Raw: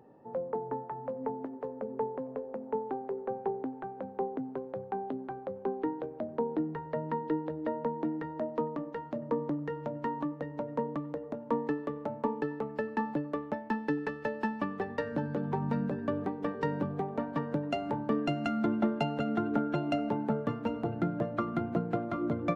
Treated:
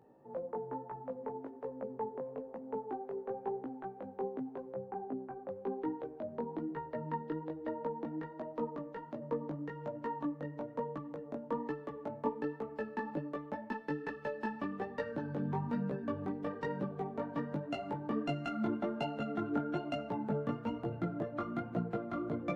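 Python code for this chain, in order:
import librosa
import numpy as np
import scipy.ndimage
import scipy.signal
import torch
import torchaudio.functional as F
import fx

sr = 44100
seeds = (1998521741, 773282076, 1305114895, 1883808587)

y = fx.chorus_voices(x, sr, voices=2, hz=1.1, base_ms=18, depth_ms=3.0, mix_pct=45)
y = fx.moving_average(y, sr, points=12, at=(4.73, 5.47), fade=0.02)
y = F.gain(torch.from_numpy(y), -2.0).numpy()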